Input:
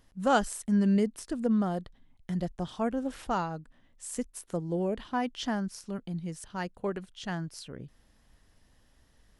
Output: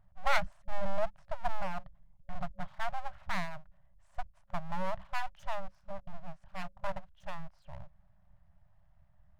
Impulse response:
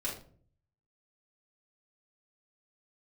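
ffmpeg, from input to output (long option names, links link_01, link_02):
-af "adynamicsmooth=sensitivity=0.5:basefreq=910,aeval=exprs='abs(val(0))':channel_layout=same,afftfilt=real='re*(1-between(b*sr/4096,200,550))':imag='im*(1-between(b*sr/4096,200,550))':win_size=4096:overlap=0.75,volume=2dB"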